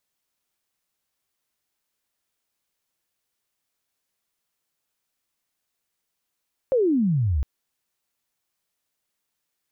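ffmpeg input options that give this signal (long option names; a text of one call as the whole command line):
ffmpeg -f lavfi -i "aevalsrc='pow(10,(-16.5-3*t/0.71)/20)*sin(2*PI*550*0.71/log(63/550)*(exp(log(63/550)*t/0.71)-1))':duration=0.71:sample_rate=44100" out.wav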